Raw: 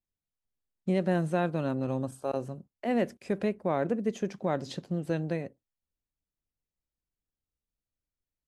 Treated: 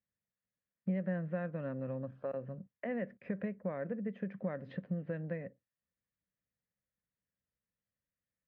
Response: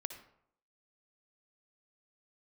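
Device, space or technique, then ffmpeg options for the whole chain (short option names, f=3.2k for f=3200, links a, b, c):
bass amplifier: -af "acompressor=threshold=-39dB:ratio=3,highpass=75,equalizer=f=120:t=q:w=4:g=4,equalizer=f=190:t=q:w=4:g=8,equalizer=f=360:t=q:w=4:g=-7,equalizer=f=530:t=q:w=4:g=7,equalizer=f=830:t=q:w=4:g=-8,equalizer=f=1.8k:t=q:w=4:g=9,lowpass=f=2.4k:w=0.5412,lowpass=f=2.4k:w=1.3066,volume=-1.5dB"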